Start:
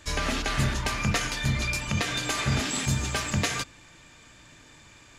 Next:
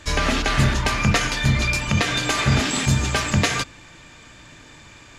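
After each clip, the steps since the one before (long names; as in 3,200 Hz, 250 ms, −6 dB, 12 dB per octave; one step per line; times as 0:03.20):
high-shelf EQ 8,400 Hz −8 dB
level +7.5 dB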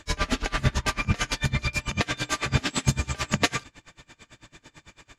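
tremolo with a sine in dB 9 Hz, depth 27 dB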